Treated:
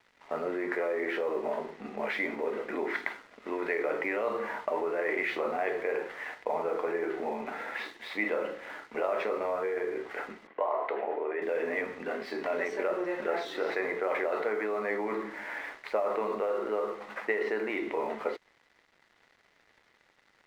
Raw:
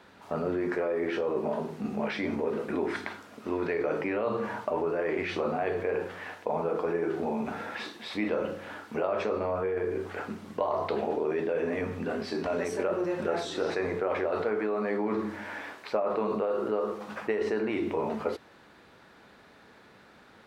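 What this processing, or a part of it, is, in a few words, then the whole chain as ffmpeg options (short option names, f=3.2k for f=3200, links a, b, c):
pocket radio on a weak battery: -filter_complex "[0:a]highpass=360,lowpass=3.8k,aeval=exprs='sgn(val(0))*max(abs(val(0))-0.00178,0)':c=same,equalizer=f=2k:t=o:w=0.23:g=10,asettb=1/sr,asplit=3[a][b][c];[a]atrim=end=10.474[d];[b]atrim=start=10.47:end=11.42,asetpts=PTS-STARTPTS,afade=t=in:d=0.004:c=qsin,afade=t=out:st=0.946:d=0.004:c=qsin,acrossover=split=310 2800:gain=0.178 1 0.0708[e][f][g];[e][f][g]amix=inputs=3:normalize=0[h];[c]atrim=start=11.416[i];[d][h]acrossfade=d=0.004:c1=hsin:c2=qsin[j];[j][i]acrossfade=d=0.004:c1=qsin:c2=hsin"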